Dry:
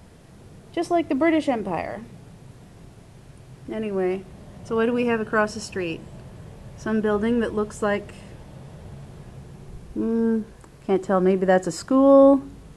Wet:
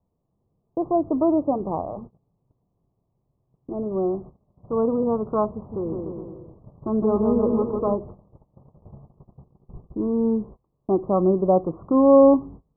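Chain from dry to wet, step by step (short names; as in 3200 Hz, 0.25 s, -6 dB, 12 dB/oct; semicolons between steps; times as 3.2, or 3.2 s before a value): gate -38 dBFS, range -26 dB; steep low-pass 1200 Hz 96 dB/oct; 5.55–7.96 bouncing-ball echo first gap 0.16 s, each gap 0.85×, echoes 5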